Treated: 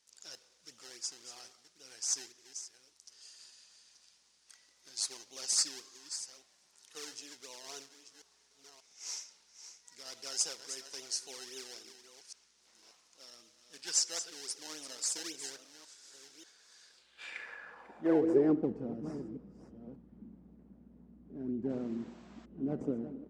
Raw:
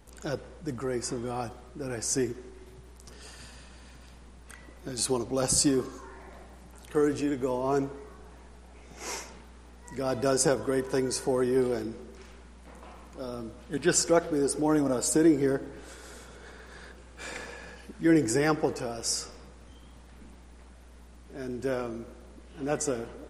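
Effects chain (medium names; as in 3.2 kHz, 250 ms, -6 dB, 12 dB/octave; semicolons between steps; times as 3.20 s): chunks repeated in reverse 587 ms, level -11 dB; in parallel at -5.5 dB: decimation with a swept rate 26×, swing 100% 3.7 Hz; on the sum: painted sound noise, 21.69–22.46 s, 590–8100 Hz -35 dBFS; band-pass sweep 5.6 kHz -> 220 Hz, 16.86–18.69 s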